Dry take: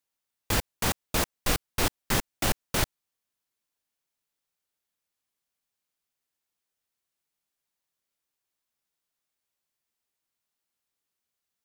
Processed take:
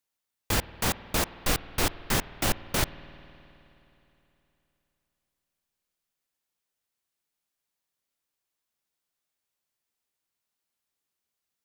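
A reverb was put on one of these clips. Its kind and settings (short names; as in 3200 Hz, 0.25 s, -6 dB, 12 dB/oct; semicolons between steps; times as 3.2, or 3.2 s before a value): spring tank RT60 3.2 s, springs 52 ms, chirp 60 ms, DRR 15.5 dB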